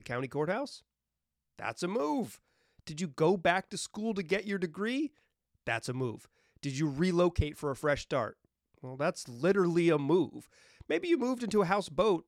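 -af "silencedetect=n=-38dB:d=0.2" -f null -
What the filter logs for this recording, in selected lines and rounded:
silence_start: 0.75
silence_end: 1.59 | silence_duration: 0.84
silence_start: 2.27
silence_end: 2.87 | silence_duration: 0.60
silence_start: 5.07
silence_end: 5.67 | silence_duration: 0.60
silence_start: 6.15
silence_end: 6.63 | silence_duration: 0.48
silence_start: 8.30
silence_end: 8.84 | silence_duration: 0.54
silence_start: 10.39
silence_end: 10.81 | silence_duration: 0.42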